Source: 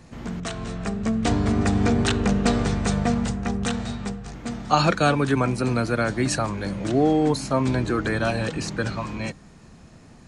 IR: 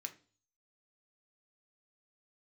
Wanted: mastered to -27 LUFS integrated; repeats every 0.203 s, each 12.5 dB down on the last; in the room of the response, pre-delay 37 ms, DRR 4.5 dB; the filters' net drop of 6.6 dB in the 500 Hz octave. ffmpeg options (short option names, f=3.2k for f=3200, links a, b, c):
-filter_complex "[0:a]equalizer=f=500:t=o:g=-8.5,aecho=1:1:203|406|609:0.237|0.0569|0.0137,asplit=2[a][b];[1:a]atrim=start_sample=2205,adelay=37[c];[b][c]afir=irnorm=-1:irlink=0,volume=-1.5dB[d];[a][d]amix=inputs=2:normalize=0,volume=-3dB"